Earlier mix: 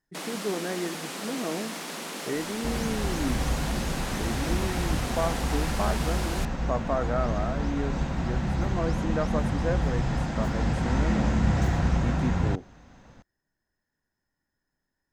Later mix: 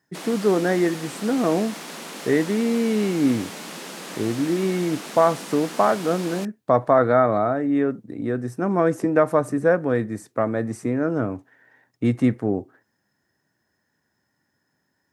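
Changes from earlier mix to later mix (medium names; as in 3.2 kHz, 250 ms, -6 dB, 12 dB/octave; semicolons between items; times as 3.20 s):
speech +11.5 dB; second sound: muted; master: add high-pass 92 Hz 24 dB/octave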